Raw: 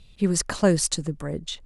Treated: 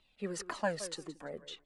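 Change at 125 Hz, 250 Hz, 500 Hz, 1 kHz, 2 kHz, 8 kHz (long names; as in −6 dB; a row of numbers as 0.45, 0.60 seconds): −21.5, −18.5, −12.5, −5.5, −7.5, −18.0 decibels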